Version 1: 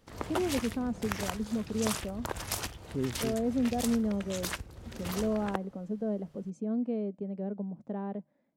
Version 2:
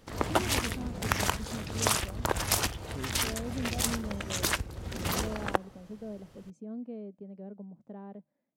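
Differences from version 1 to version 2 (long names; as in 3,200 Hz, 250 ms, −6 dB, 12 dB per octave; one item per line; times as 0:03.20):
speech −8.5 dB
background +7.0 dB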